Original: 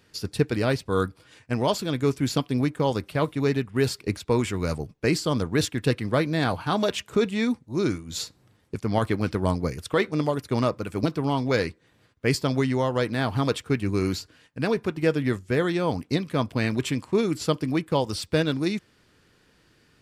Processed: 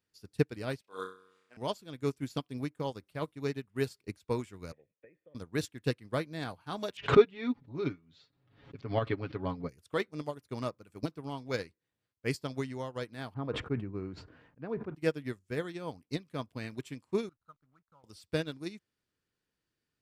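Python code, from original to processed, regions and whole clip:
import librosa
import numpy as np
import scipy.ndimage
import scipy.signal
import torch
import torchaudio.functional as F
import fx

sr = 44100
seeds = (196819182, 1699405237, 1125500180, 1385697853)

y = fx.chain(x, sr, fx.highpass(hz=510.0, slope=12),
    fx.high_shelf(hz=7600.0, db=-8.0),
    fx.room_flutter(wall_m=5.5, rt60_s=1.0), at=(0.81, 1.57))
y = fx.chain(y, sr, fx.block_float(bits=5),
    fx.formant_cascade(vowel='e'),
    fx.band_squash(depth_pct=100), at=(4.72, 5.35))
y = fx.chain(y, sr, fx.lowpass(hz=3700.0, slope=24),
    fx.comb(ms=7.2, depth=0.68),
    fx.pre_swell(db_per_s=65.0), at=(6.97, 9.69))
y = fx.chain(y, sr, fx.lowpass(hz=1300.0, slope=12),
    fx.sustainer(db_per_s=31.0), at=(13.34, 14.95))
y = fx.chain(y, sr, fx.ladder_lowpass(hz=1400.0, resonance_pct=85),
    fx.peak_eq(hz=370.0, db=-13.0, octaves=1.1),
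    fx.backlash(play_db=-46.5), at=(17.29, 18.04))
y = fx.high_shelf(y, sr, hz=6100.0, db=5.5)
y = fx.upward_expand(y, sr, threshold_db=-31.0, expansion=2.5)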